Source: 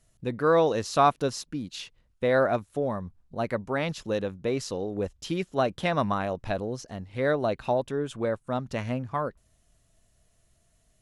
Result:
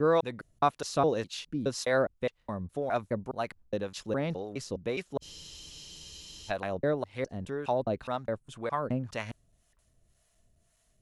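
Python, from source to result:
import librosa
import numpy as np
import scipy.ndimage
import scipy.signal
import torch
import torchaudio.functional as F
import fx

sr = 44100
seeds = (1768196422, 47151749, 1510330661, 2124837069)

y = fx.block_reorder(x, sr, ms=207.0, group=3)
y = fx.harmonic_tremolo(y, sr, hz=1.9, depth_pct=70, crossover_hz=600.0)
y = fx.spec_freeze(y, sr, seeds[0], at_s=5.24, hold_s=1.26)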